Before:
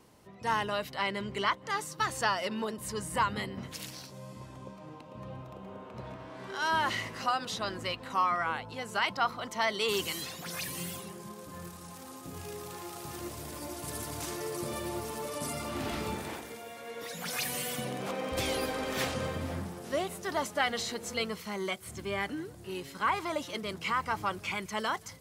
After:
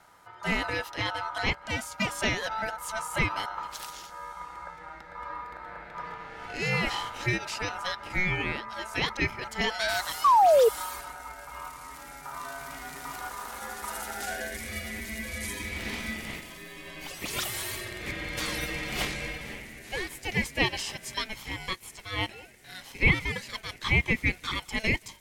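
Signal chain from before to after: high-pass sweep 100 Hz -> 1000 Hz, 13.83–14.63; ring modulator 1100 Hz; painted sound fall, 10.24–10.69, 430–1200 Hz -22 dBFS; gain +4 dB

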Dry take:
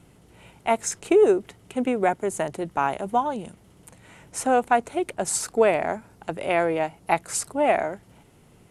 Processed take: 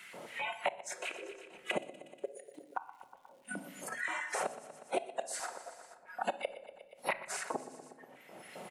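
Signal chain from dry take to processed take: whisperiser; tone controls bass +10 dB, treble -5 dB; harmonic-percussive split percussive -11 dB; bell 230 Hz +5.5 dB 0.45 oct; flipped gate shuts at -22 dBFS, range -40 dB; crackle 280/s -72 dBFS; spectral noise reduction 22 dB; LFO high-pass square 3.8 Hz 600–1900 Hz; feedback echo 0.12 s, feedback 50%, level -16 dB; on a send at -9 dB: reverb RT60 0.60 s, pre-delay 5 ms; on the sum: three-band squash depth 100%; gain +5 dB

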